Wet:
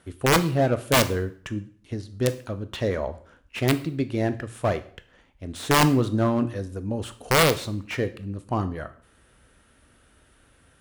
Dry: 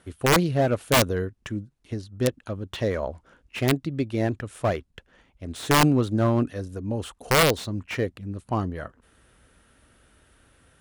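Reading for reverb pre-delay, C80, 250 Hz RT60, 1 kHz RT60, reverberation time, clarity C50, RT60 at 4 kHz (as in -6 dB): 7 ms, 19.0 dB, 0.50 s, 0.50 s, 0.50 s, 15.0 dB, 0.45 s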